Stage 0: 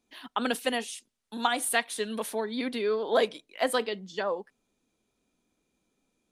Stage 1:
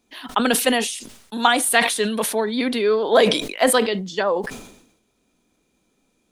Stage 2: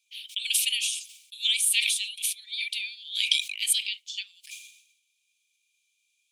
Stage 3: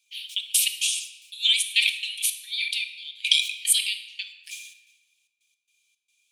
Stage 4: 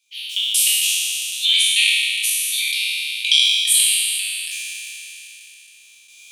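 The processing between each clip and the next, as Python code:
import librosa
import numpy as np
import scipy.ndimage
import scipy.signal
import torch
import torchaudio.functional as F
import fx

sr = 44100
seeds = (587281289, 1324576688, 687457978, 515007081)

y1 = fx.sustainer(x, sr, db_per_s=72.0)
y1 = y1 * librosa.db_to_amplitude(9.0)
y2 = scipy.signal.sosfilt(scipy.signal.cheby1(6, 3, 2300.0, 'highpass', fs=sr, output='sos'), y1)
y2 = fx.high_shelf(y2, sr, hz=4700.0, db=-4.5)
y2 = y2 * librosa.db_to_amplitude(2.5)
y3 = fx.step_gate(y2, sr, bpm=111, pattern='xxx.x.xx.', floor_db=-24.0, edge_ms=4.5)
y3 = fx.room_shoebox(y3, sr, seeds[0], volume_m3=1000.0, walls='mixed', distance_m=0.79)
y3 = y3 * librosa.db_to_amplitude(3.5)
y4 = fx.spec_trails(y3, sr, decay_s=2.17)
y4 = fx.recorder_agc(y4, sr, target_db=-10.5, rise_db_per_s=11.0, max_gain_db=30)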